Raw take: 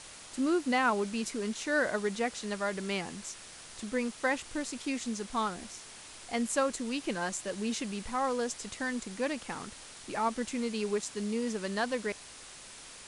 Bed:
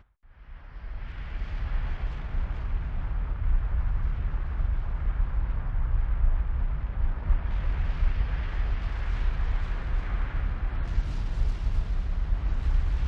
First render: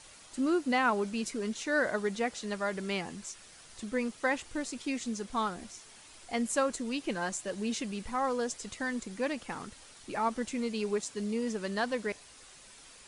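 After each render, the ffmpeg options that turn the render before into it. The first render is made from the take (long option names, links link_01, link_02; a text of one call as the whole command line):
ffmpeg -i in.wav -af "afftdn=noise_reduction=7:noise_floor=-49" out.wav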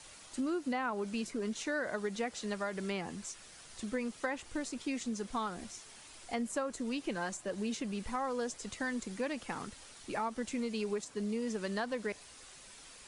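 ffmpeg -i in.wav -filter_complex "[0:a]acrossover=split=130|1200|1600[link_01][link_02][link_03][link_04];[link_04]alimiter=level_in=6.5dB:limit=-24dB:level=0:latency=1:release=336,volume=-6.5dB[link_05];[link_01][link_02][link_03][link_05]amix=inputs=4:normalize=0,acompressor=threshold=-32dB:ratio=5" out.wav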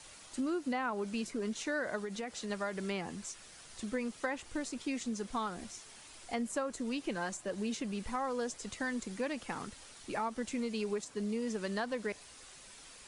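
ffmpeg -i in.wav -filter_complex "[0:a]asettb=1/sr,asplit=3[link_01][link_02][link_03];[link_01]atrim=end=1.994[link_04];[link_02]atrim=start=1.99:end=2.5,asetpts=PTS-STARTPTS,afade=type=in:duration=0.004:curve=qsin,afade=type=out:start_time=0.506:duration=0.004:curve=qsin,acompressor=threshold=-35dB:ratio=6:attack=3.2:release=140:knee=1:detection=peak[link_05];[link_03]atrim=start=2.496[link_06];[link_04][link_05]acrossfade=duration=0.004:curve1=hsin:curve2=qsin[link_07];[link_07][link_06]acrossfade=duration=0.004:curve1=qsin:curve2=hsin" out.wav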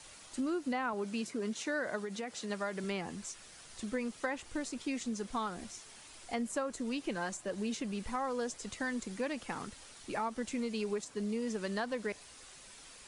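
ffmpeg -i in.wav -filter_complex "[0:a]asettb=1/sr,asplit=3[link_01][link_02][link_03];[link_01]atrim=end=0.934[link_04];[link_02]atrim=start=0.93:end=2.84,asetpts=PTS-STARTPTS,afade=type=in:duration=0.004:curve=qsin,afade=type=out:start_time=1.906:duration=0.004:curve=qsin,highpass=93[link_05];[link_03]atrim=start=2.836[link_06];[link_04][link_05]acrossfade=duration=0.004:curve1=hsin:curve2=qsin[link_07];[link_07][link_06]acrossfade=duration=0.004:curve1=qsin:curve2=hsin" out.wav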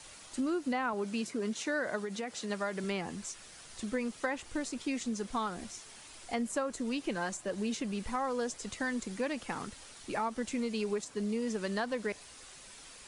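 ffmpeg -i in.wav -af "volume=2dB" out.wav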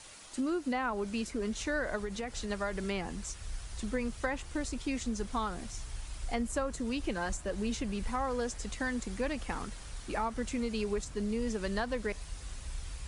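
ffmpeg -i in.wav -i bed.wav -filter_complex "[1:a]volume=-16dB[link_01];[0:a][link_01]amix=inputs=2:normalize=0" out.wav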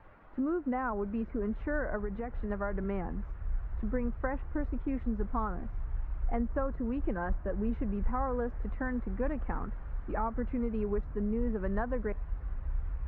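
ffmpeg -i in.wav -af "lowpass=frequency=1600:width=0.5412,lowpass=frequency=1600:width=1.3066,lowshelf=frequency=100:gain=8" out.wav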